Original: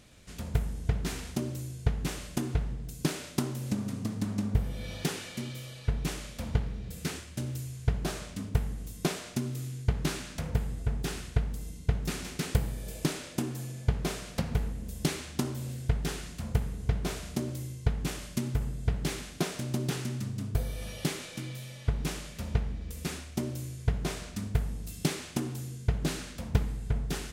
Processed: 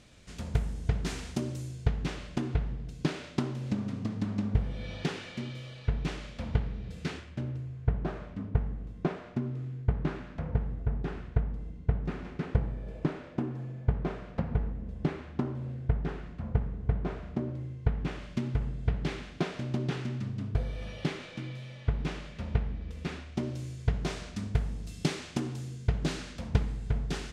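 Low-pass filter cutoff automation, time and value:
0:01.62 7,700 Hz
0:02.18 3,800 Hz
0:07.11 3,800 Hz
0:07.61 1,500 Hz
0:17.53 1,500 Hz
0:18.41 3,200 Hz
0:23.25 3,200 Hz
0:23.69 6,000 Hz

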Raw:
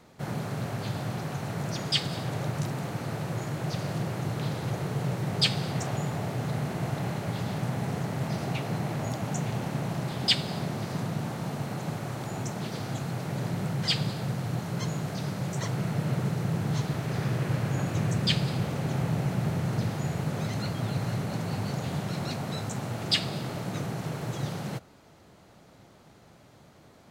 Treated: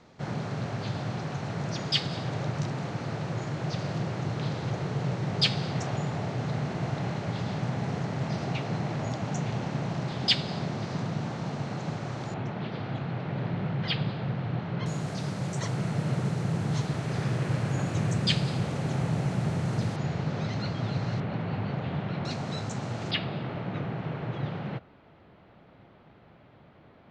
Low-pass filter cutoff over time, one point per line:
low-pass filter 24 dB per octave
6,400 Hz
from 0:12.34 3,500 Hz
from 0:14.86 9,300 Hz
from 0:19.96 5,500 Hz
from 0:21.20 3,300 Hz
from 0:22.25 7,000 Hz
from 0:23.11 3,200 Hz

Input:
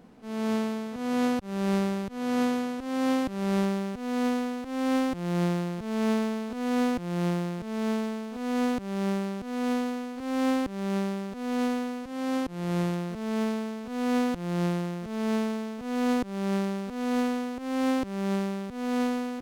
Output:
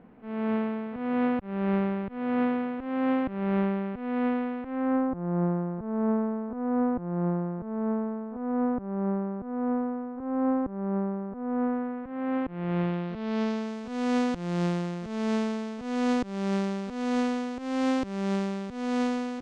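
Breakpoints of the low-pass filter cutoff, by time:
low-pass filter 24 dB per octave
0:04.60 2,500 Hz
0:05.11 1,300 Hz
0:11.44 1,300 Hz
0:13.00 3,300 Hz
0:13.76 7,900 Hz

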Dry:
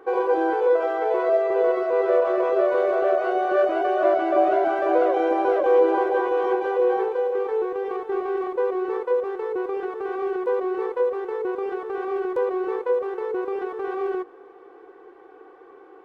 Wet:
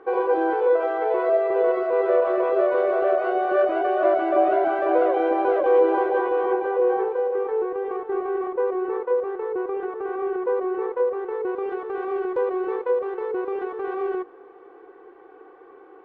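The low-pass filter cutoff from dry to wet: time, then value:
0:06.10 3,300 Hz
0:06.61 2,000 Hz
0:11.14 2,000 Hz
0:11.73 3,200 Hz

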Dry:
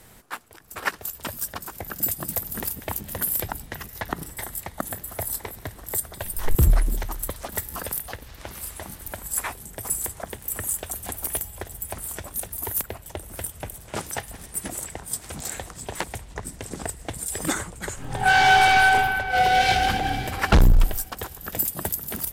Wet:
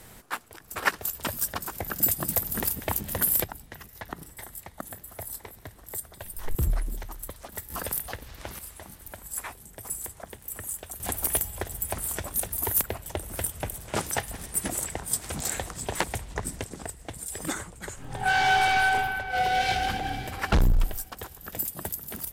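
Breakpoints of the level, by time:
+1.5 dB
from 0:03.44 −8.5 dB
from 0:07.70 −1 dB
from 0:08.59 −7.5 dB
from 0:11.00 +2 dB
from 0:16.64 −6 dB

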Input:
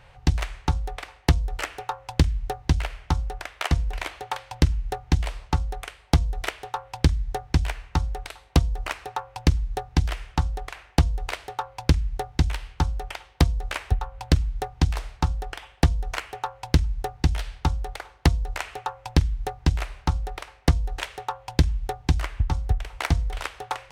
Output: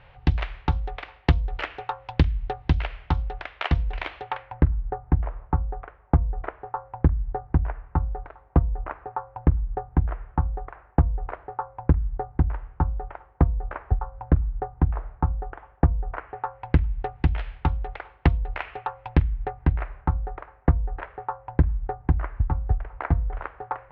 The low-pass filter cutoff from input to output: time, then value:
low-pass filter 24 dB per octave
0:04.21 3,500 Hz
0:04.71 1,400 Hz
0:16.11 1,400 Hz
0:16.93 2,700 Hz
0:19.01 2,700 Hz
0:20.21 1,600 Hz

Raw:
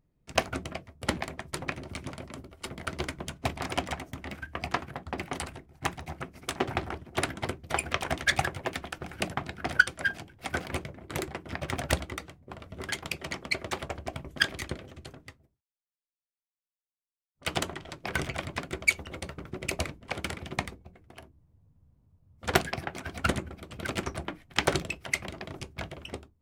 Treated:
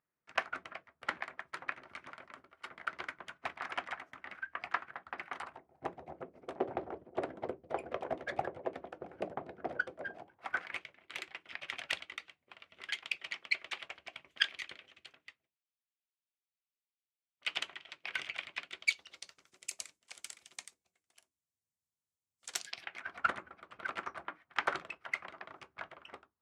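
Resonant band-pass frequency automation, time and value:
resonant band-pass, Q 1.9
0:05.32 1,500 Hz
0:05.86 510 Hz
0:10.10 510 Hz
0:10.84 2,700 Hz
0:18.60 2,700 Hz
0:19.55 7,500 Hz
0:22.54 7,500 Hz
0:23.11 1,300 Hz

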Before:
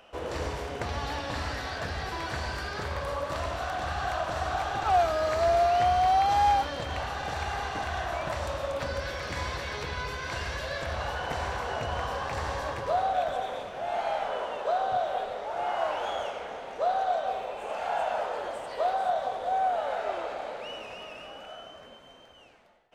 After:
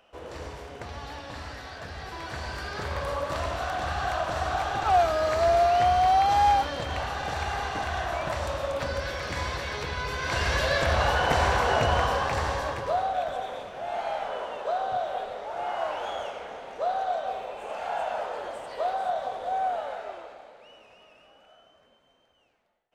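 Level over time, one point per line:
0:01.83 −6 dB
0:03.00 +2 dB
0:10.01 +2 dB
0:10.57 +9 dB
0:11.84 +9 dB
0:13.12 −1 dB
0:19.72 −1 dB
0:20.52 −13 dB

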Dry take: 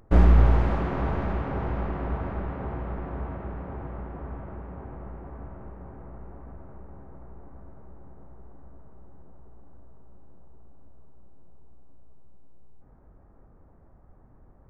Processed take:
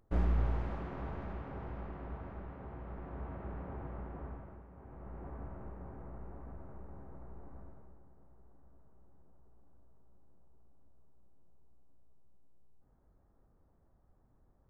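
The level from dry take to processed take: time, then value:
0:02.68 −14 dB
0:03.55 −7 dB
0:04.25 −7 dB
0:04.70 −16 dB
0:05.24 −4.5 dB
0:07.61 −4.5 dB
0:08.09 −14 dB

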